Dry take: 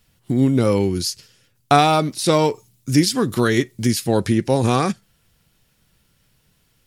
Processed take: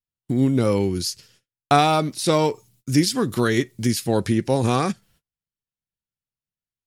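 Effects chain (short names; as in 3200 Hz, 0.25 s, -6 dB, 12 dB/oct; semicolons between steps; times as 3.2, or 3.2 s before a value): gate -53 dBFS, range -33 dB; gain -2.5 dB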